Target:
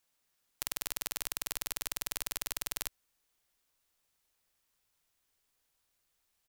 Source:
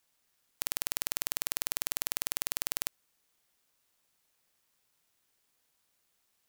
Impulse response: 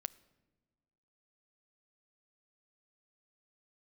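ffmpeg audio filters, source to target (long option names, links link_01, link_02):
-filter_complex "[0:a]asubboost=boost=3:cutoff=89,asplit=2[link_01][link_02];[link_02]asetrate=33038,aresample=44100,atempo=1.33484,volume=-13dB[link_03];[link_01][link_03]amix=inputs=2:normalize=0,volume=-3.5dB"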